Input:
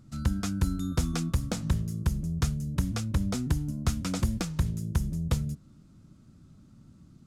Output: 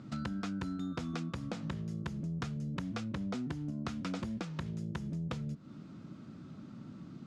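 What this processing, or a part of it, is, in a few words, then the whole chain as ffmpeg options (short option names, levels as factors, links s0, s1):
AM radio: -af "highpass=190,lowpass=3500,acompressor=threshold=0.00501:ratio=5,asoftclip=type=tanh:threshold=0.0133,volume=3.35"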